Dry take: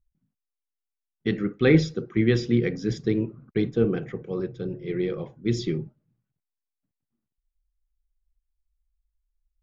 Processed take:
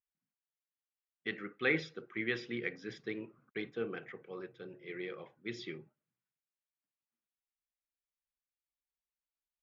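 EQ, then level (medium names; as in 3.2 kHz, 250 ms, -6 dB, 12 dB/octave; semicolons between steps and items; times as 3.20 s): band-pass filter 2.4 kHz, Q 1.1; treble shelf 2.9 kHz -11.5 dB; +1.5 dB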